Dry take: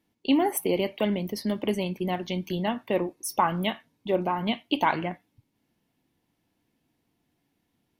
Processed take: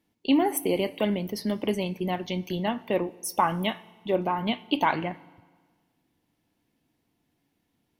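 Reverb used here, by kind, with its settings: FDN reverb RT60 1.5 s, low-frequency decay 1×, high-frequency decay 0.9×, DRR 19 dB

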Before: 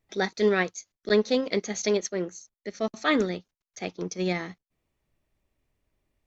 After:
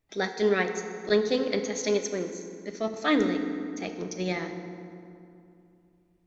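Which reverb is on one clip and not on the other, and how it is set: FDN reverb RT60 2.6 s, low-frequency decay 1.3×, high-frequency decay 0.55×, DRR 5.5 dB; gain -2 dB

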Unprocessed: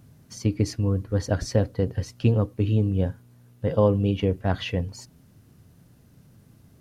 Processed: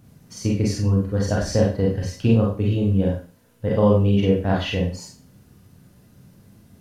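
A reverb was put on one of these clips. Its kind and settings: Schroeder reverb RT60 0.38 s, combs from 31 ms, DRR -2.5 dB

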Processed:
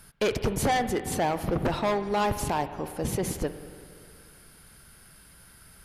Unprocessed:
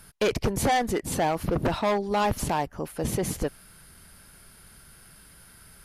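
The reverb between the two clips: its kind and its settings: spring tank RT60 2.3 s, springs 46/59 ms, chirp 60 ms, DRR 10.5 dB; gain -1.5 dB

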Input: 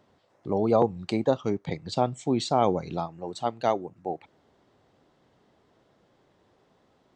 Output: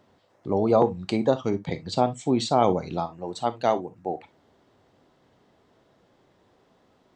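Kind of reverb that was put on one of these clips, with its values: non-linear reverb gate 80 ms flat, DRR 11.5 dB; gain +2 dB

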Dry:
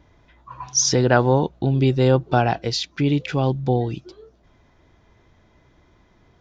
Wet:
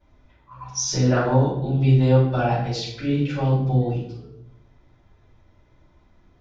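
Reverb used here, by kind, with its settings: shoebox room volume 180 m³, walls mixed, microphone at 5.3 m; gain -19 dB

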